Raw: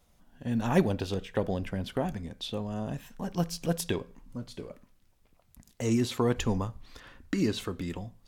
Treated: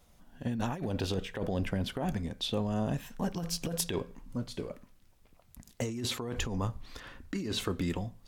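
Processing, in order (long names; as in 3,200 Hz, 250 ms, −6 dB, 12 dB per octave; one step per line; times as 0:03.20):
compressor whose output falls as the input rises −32 dBFS, ratio −1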